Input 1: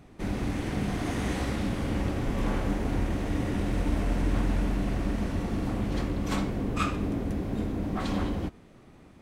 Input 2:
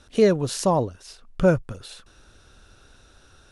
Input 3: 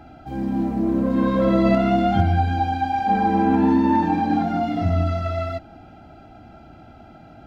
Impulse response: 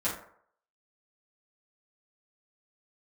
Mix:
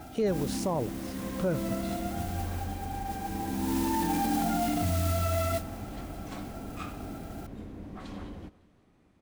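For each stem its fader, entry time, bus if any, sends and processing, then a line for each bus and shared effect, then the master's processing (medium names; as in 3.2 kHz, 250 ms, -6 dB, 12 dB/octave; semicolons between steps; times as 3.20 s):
-12.0 dB, 0.00 s, no send, echo send -20.5 dB, none
-9.0 dB, 0.00 s, no send, no echo send, high-pass 180 Hz 6 dB/octave; bass shelf 500 Hz +7 dB
0.0 dB, 0.00 s, no send, echo send -24 dB, modulation noise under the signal 12 dB; auto duck -19 dB, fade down 0.90 s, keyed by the second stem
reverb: none
echo: feedback delay 184 ms, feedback 52%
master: peak limiter -20 dBFS, peak gain reduction 11 dB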